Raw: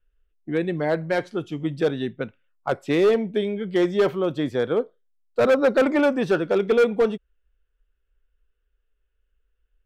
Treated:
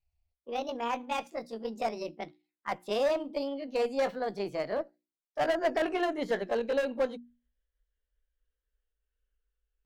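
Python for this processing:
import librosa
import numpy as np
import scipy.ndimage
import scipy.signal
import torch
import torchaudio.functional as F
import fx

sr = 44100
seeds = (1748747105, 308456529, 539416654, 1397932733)

y = fx.pitch_glide(x, sr, semitones=8.5, runs='ending unshifted')
y = fx.hum_notches(y, sr, base_hz=60, count=6)
y = fx.cheby_harmonics(y, sr, harmonics=(4,), levels_db=(-26,), full_scale_db=-11.0)
y = y * 10.0 ** (-8.5 / 20.0)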